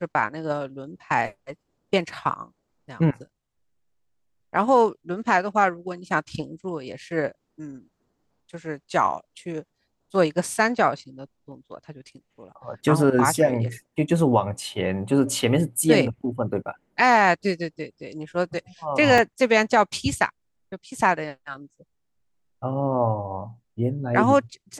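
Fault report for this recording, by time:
19.18 gap 2.5 ms

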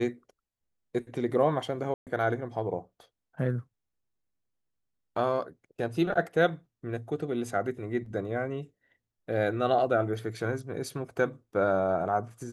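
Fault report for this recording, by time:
1.94–2.07 gap 0.128 s

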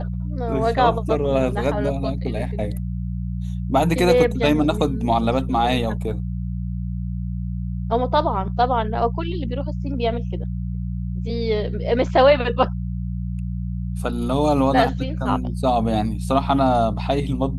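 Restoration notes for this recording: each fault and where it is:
hum 60 Hz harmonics 3 -26 dBFS

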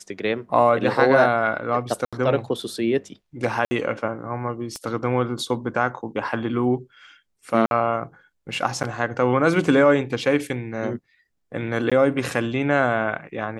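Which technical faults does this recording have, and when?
2.05–2.13 gap 76 ms
3.65–3.71 gap 60 ms
4.76 pop -20 dBFS
7.66–7.71 gap 51 ms
8.83–8.84 gap 8 ms
11.9–11.92 gap 16 ms

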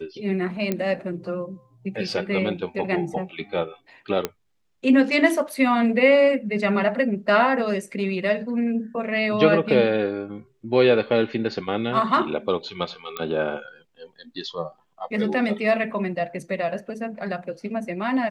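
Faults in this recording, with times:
0.72 pop -11 dBFS
4.25 pop -9 dBFS
13.17 pop -13 dBFS

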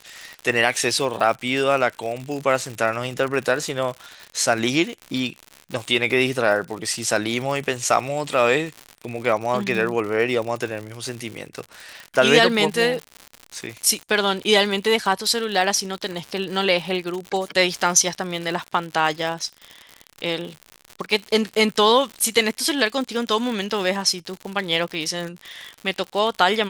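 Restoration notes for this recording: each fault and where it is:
crackle 96/s -27 dBFS

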